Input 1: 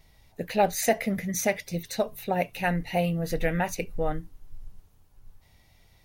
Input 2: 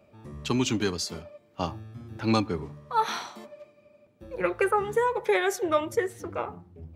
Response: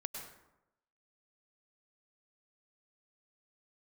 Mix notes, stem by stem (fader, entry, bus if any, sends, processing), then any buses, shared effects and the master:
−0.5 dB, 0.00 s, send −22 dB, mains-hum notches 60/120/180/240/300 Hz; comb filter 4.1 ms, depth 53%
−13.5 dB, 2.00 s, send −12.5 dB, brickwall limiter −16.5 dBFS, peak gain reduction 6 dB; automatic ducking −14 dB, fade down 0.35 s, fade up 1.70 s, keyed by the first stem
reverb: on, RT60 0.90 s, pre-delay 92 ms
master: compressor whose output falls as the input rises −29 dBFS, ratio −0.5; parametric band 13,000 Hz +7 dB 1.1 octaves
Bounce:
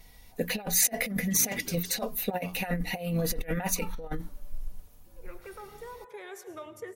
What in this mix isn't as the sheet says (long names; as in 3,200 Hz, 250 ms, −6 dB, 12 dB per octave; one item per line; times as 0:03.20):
stem 1: send off
stem 2: entry 2.00 s → 0.85 s